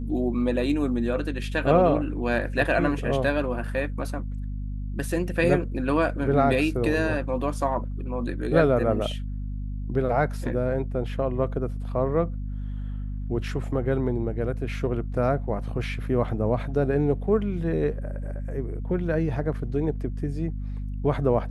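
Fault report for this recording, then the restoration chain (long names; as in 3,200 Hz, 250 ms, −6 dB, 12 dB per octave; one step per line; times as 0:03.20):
mains hum 50 Hz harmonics 5 −31 dBFS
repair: hum removal 50 Hz, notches 5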